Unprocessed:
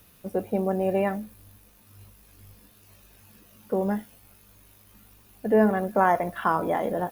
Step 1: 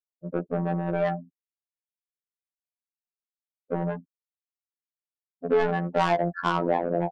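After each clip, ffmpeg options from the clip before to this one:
-af "afftfilt=real='re*gte(hypot(re,im),0.0631)':imag='im*gte(hypot(re,im),0.0631)':win_size=1024:overlap=0.75,asoftclip=type=tanh:threshold=-21.5dB,afftfilt=real='hypot(re,im)*cos(PI*b)':imag='0':win_size=2048:overlap=0.75,volume=6.5dB"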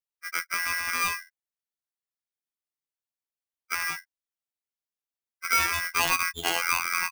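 -af "aeval=exprs='val(0)*sgn(sin(2*PI*1800*n/s))':c=same,volume=-2dB"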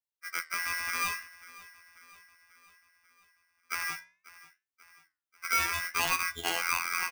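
-af "aecho=1:1:540|1080|1620|2160|2700:0.106|0.0604|0.0344|0.0196|0.0112,flanger=delay=9.1:depth=5.3:regen=-80:speed=0.63:shape=sinusoidal"

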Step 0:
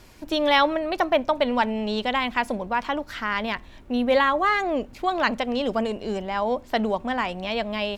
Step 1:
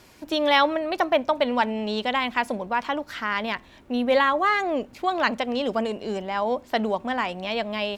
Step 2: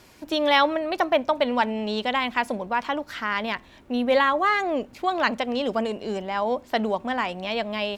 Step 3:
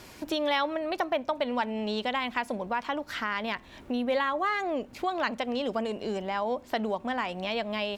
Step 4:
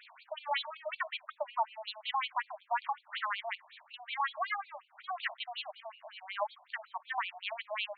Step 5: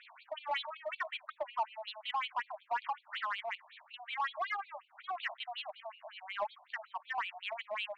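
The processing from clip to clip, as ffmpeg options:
-af "highpass=f=140:p=1"
-af anull
-af "acompressor=threshold=-38dB:ratio=2,volume=4dB"
-af "afftfilt=real='re*between(b*sr/1024,790*pow(3300/790,0.5+0.5*sin(2*PI*5.4*pts/sr))/1.41,790*pow(3300/790,0.5+0.5*sin(2*PI*5.4*pts/sr))*1.41)':imag='im*between(b*sr/1024,790*pow(3300/790,0.5+0.5*sin(2*PI*5.4*pts/sr))/1.41,790*pow(3300/790,0.5+0.5*sin(2*PI*5.4*pts/sr))*1.41)':win_size=1024:overlap=0.75"
-filter_complex "[0:a]asplit=2[a][b];[b]asoftclip=type=hard:threshold=-35.5dB,volume=-3dB[c];[a][c]amix=inputs=2:normalize=0,lowpass=4k,volume=-4.5dB"

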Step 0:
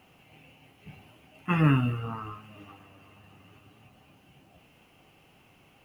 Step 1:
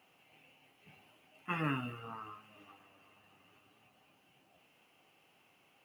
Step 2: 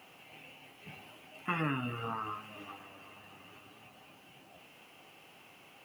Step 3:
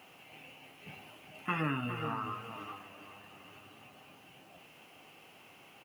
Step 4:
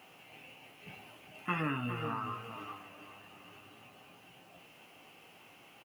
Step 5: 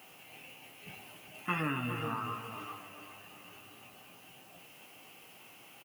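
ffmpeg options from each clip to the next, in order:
-af "highpass=f=450:p=1,volume=-6.5dB"
-af "acompressor=threshold=-45dB:ratio=2.5,volume=11dB"
-filter_complex "[0:a]asplit=2[a][b];[b]adelay=408.2,volume=-9dB,highshelf=f=4k:g=-9.18[c];[a][c]amix=inputs=2:normalize=0"
-filter_complex "[0:a]asplit=2[a][b];[b]adelay=17,volume=-10.5dB[c];[a][c]amix=inputs=2:normalize=0,volume=-1dB"
-af "crystalizer=i=1.5:c=0,aecho=1:1:274:0.237"

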